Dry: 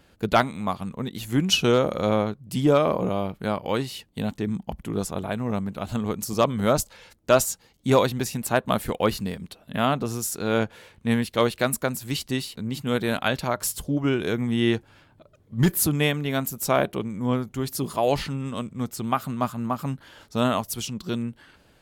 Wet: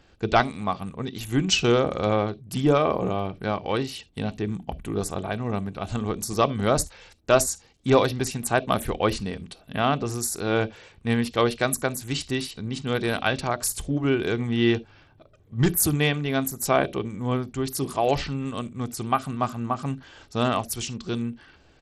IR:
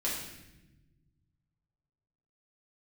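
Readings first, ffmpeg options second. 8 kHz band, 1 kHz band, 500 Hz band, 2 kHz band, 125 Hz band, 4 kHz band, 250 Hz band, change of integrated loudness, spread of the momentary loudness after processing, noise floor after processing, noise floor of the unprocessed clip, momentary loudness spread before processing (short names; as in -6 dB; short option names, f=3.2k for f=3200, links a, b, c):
+1.5 dB, +0.5 dB, -0.5 dB, +1.0 dB, 0.0 dB, -0.5 dB, -1.0 dB, 0.0 dB, 11 LU, -57 dBFS, -59 dBFS, 10 LU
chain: -filter_complex "[0:a]aecho=1:1:2.6:0.31,asplit=2[a][b];[b]asuperstop=centerf=1300:order=20:qfactor=0.8[c];[1:a]atrim=start_sample=2205,atrim=end_sample=3528,lowshelf=f=190:g=10.5[d];[c][d]afir=irnorm=-1:irlink=0,volume=-18dB[e];[a][e]amix=inputs=2:normalize=0" -ar 32000 -c:a sbc -b:a 64k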